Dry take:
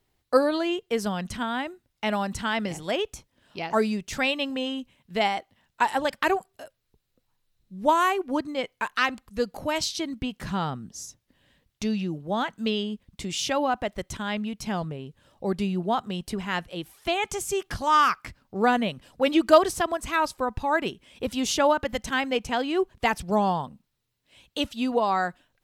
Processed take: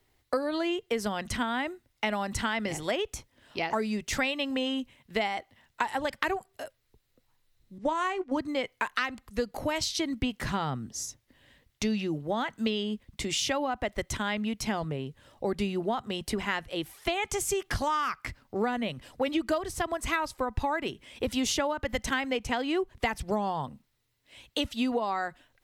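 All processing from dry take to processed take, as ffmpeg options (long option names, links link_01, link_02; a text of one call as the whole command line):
ffmpeg -i in.wav -filter_complex "[0:a]asettb=1/sr,asplit=3[link_01][link_02][link_03];[link_01]atrim=end=7.784[link_04];[link_02]atrim=start=7.78:end=8.37,asetpts=PTS-STARTPTS,afade=type=in:duration=0.004:curve=qsin,afade=type=out:start_time=0.586:duration=0.004:curve=qsin,agate=range=-9dB:threshold=-32dB:ratio=16:release=100:detection=peak,lowpass=frequency=8500:width=0.5412,lowpass=frequency=8500:width=1.3066,asplit=2[link_05][link_06];[link_06]adelay=19,volume=-13.5dB[link_07];[link_05][link_07]amix=inputs=2:normalize=0,atrim=end_sample=26019[link_08];[link_03]atrim=start=8.366[link_09];[link_04][link_08]acrossfade=duration=0.004:curve1=hsin:curve2=qsin[link_10];[link_10][link_09]acrossfade=duration=0.004:curve1=qsin:curve2=hsin,equalizer=frequency=180:width_type=o:width=0.21:gain=-12.5,acrossover=split=150[link_11][link_12];[link_12]acompressor=threshold=-29dB:ratio=10[link_13];[link_11][link_13]amix=inputs=2:normalize=0,equalizer=frequency=2000:width_type=o:width=0.23:gain=5,volume=3dB" out.wav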